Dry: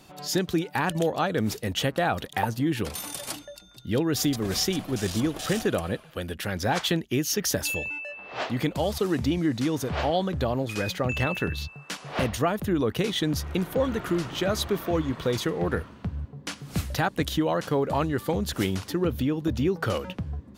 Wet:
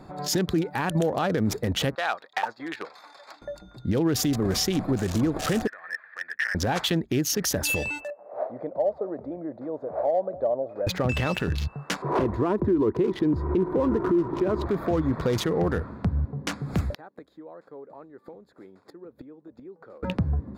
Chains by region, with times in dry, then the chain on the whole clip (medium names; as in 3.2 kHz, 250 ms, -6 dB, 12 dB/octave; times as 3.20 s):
1.95–3.42 s: gate -30 dBFS, range -9 dB + high-pass 900 Hz + resonant high shelf 7.3 kHz -13 dB, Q 1.5
5.67–6.55 s: compression 20:1, threshold -30 dBFS + resonant high-pass 1.8 kHz, resonance Q 15 + tape spacing loss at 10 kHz 35 dB
8.10–10.87 s: band-pass filter 600 Hz, Q 5.3 + delay 197 ms -20.5 dB
12.02–14.66 s: low-pass 1.3 kHz 6 dB/octave + small resonant body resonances 360/980 Hz, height 16 dB, ringing for 40 ms
16.90–20.03 s: high-pass 270 Hz + peaking EQ 450 Hz +4 dB 0.97 oct + inverted gate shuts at -25 dBFS, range -28 dB
whole clip: local Wiener filter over 15 samples; compression 2.5:1, threshold -28 dBFS; peak limiter -24 dBFS; trim +8.5 dB